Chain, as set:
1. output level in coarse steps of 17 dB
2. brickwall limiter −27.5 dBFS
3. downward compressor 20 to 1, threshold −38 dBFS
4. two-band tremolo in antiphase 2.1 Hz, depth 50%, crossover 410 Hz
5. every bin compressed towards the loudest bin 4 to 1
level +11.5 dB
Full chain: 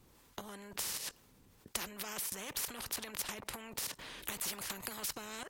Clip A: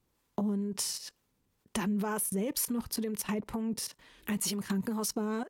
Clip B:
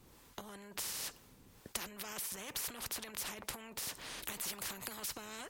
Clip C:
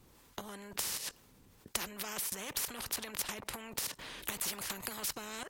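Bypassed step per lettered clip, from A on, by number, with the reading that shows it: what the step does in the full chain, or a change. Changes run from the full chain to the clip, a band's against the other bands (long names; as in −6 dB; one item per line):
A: 5, 250 Hz band +14.5 dB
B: 1, change in momentary loudness spread +5 LU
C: 2, change in integrated loudness +2.0 LU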